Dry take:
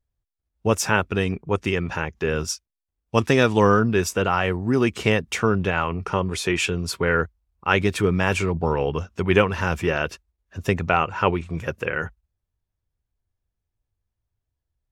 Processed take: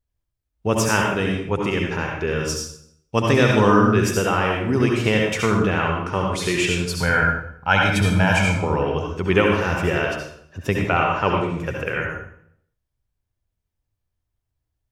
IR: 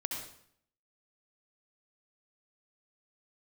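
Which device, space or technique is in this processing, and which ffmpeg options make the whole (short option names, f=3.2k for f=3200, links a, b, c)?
bathroom: -filter_complex "[0:a]asettb=1/sr,asplit=3[a][b][c];[a]atrim=end=6.964[d];[b]atrim=start=6.96:end=8.56,asetpts=PTS-STARTPTS,afade=t=in:d=0.004:c=qsin,afade=t=out:st=1.596:d=0.004:c=qsin,aecho=1:1:1.3:0.81,atrim=end_sample=70560[e];[c]atrim=start=8.556[f];[d][e]acrossfade=d=0.004:c1=hsin:c2=qsin[g];[g][f]acrossfade=d=0.004:c1=qsin:c2=hsin[h];[1:a]atrim=start_sample=2205[i];[h][i]afir=irnorm=-1:irlink=0"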